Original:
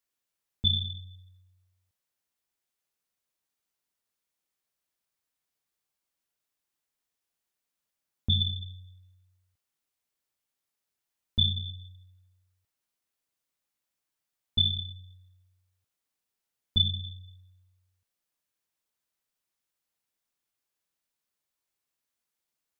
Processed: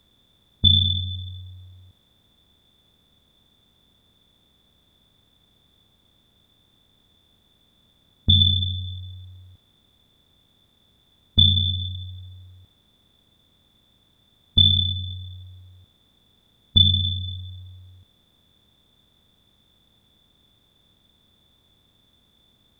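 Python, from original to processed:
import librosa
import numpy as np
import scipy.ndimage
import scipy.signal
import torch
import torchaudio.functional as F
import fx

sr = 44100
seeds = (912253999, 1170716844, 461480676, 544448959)

y = fx.bin_compress(x, sr, power=0.6)
y = y * librosa.db_to_amplitude(7.5)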